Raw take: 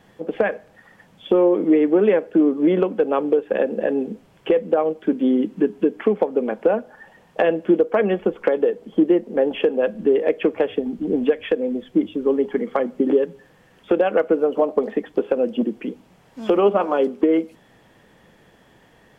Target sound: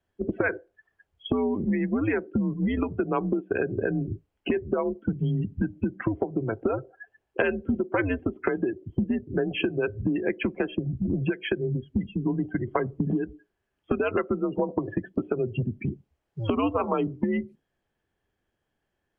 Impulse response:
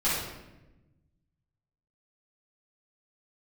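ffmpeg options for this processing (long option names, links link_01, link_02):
-filter_complex "[0:a]afftdn=noise_reduction=28:noise_floor=-32,acrossover=split=1300[link_01][link_02];[link_01]acompressor=threshold=-26dB:ratio=6[link_03];[link_03][link_02]amix=inputs=2:normalize=0,afreqshift=-110,volume=2dB"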